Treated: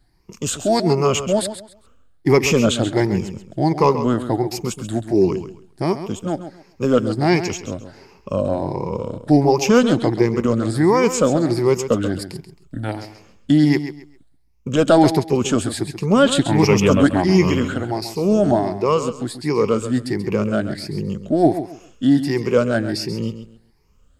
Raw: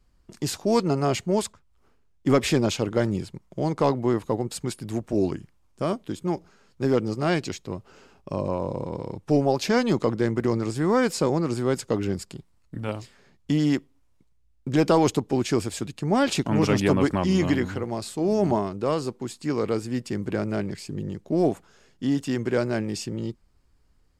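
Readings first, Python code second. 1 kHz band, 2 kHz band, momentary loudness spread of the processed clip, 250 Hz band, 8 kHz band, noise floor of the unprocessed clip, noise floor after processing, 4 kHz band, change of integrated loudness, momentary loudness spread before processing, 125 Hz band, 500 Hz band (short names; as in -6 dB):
+6.5 dB, +6.5 dB, 13 LU, +6.5 dB, +7.5 dB, -62 dBFS, -54 dBFS, +7.0 dB, +6.5 dB, 11 LU, +6.0 dB, +7.0 dB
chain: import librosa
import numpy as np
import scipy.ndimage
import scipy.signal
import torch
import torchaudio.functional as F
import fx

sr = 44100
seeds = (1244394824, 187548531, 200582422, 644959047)

y = fx.spec_ripple(x, sr, per_octave=0.8, drift_hz=1.4, depth_db=14)
y = fx.echo_feedback(y, sr, ms=134, feedback_pct=24, wet_db=-11.0)
y = y * librosa.db_to_amplitude(4.0)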